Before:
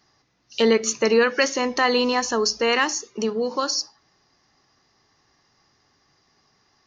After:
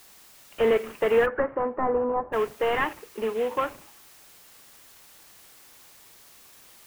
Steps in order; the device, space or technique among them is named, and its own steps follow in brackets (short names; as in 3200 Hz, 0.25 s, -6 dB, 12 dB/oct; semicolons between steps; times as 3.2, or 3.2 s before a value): army field radio (BPF 360–2900 Hz; CVSD 16 kbps; white noise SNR 24 dB); 1.25–2.32 LPF 1700 Hz -> 1000 Hz 24 dB/oct